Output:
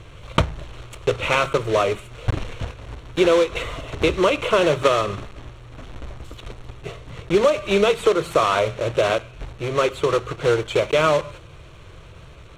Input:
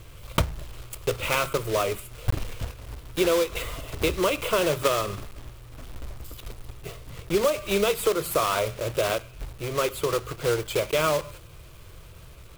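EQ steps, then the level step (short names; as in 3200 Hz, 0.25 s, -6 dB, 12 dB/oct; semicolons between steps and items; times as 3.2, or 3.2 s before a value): air absorption 100 m; low shelf 75 Hz -6.5 dB; notch 4900 Hz, Q 5.6; +6.5 dB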